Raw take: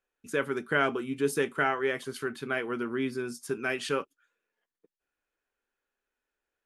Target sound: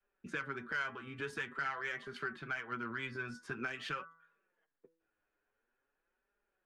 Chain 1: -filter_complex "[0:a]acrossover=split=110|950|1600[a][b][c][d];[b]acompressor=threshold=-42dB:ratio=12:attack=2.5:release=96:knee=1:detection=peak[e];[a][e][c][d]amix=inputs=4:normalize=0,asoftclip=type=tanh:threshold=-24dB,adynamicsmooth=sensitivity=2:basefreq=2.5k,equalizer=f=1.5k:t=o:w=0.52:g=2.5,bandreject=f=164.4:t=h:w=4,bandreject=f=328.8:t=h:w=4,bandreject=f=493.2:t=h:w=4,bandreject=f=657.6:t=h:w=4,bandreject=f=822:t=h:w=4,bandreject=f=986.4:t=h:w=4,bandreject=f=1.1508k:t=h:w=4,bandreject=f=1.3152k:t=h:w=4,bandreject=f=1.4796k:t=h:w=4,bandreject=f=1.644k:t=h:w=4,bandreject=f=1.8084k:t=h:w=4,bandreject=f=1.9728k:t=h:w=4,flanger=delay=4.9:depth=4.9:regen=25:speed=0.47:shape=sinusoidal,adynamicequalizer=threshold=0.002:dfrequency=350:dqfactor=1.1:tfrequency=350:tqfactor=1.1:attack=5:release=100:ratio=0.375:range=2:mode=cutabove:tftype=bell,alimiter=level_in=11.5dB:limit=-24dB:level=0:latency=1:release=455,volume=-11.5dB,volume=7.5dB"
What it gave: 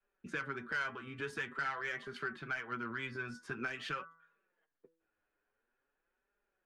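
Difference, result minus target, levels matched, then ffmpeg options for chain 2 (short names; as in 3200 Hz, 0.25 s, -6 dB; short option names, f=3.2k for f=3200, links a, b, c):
soft clip: distortion +9 dB
-filter_complex "[0:a]acrossover=split=110|950|1600[a][b][c][d];[b]acompressor=threshold=-42dB:ratio=12:attack=2.5:release=96:knee=1:detection=peak[e];[a][e][c][d]amix=inputs=4:normalize=0,asoftclip=type=tanh:threshold=-18dB,adynamicsmooth=sensitivity=2:basefreq=2.5k,equalizer=f=1.5k:t=o:w=0.52:g=2.5,bandreject=f=164.4:t=h:w=4,bandreject=f=328.8:t=h:w=4,bandreject=f=493.2:t=h:w=4,bandreject=f=657.6:t=h:w=4,bandreject=f=822:t=h:w=4,bandreject=f=986.4:t=h:w=4,bandreject=f=1.1508k:t=h:w=4,bandreject=f=1.3152k:t=h:w=4,bandreject=f=1.4796k:t=h:w=4,bandreject=f=1.644k:t=h:w=4,bandreject=f=1.8084k:t=h:w=4,bandreject=f=1.9728k:t=h:w=4,flanger=delay=4.9:depth=4.9:regen=25:speed=0.47:shape=sinusoidal,adynamicequalizer=threshold=0.002:dfrequency=350:dqfactor=1.1:tfrequency=350:tqfactor=1.1:attack=5:release=100:ratio=0.375:range=2:mode=cutabove:tftype=bell,alimiter=level_in=11.5dB:limit=-24dB:level=0:latency=1:release=455,volume=-11.5dB,volume=7.5dB"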